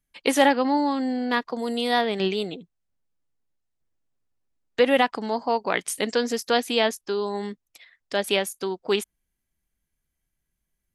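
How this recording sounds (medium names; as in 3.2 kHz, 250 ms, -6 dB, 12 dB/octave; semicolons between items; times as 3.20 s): noise floor -81 dBFS; spectral tilt -3.0 dB/octave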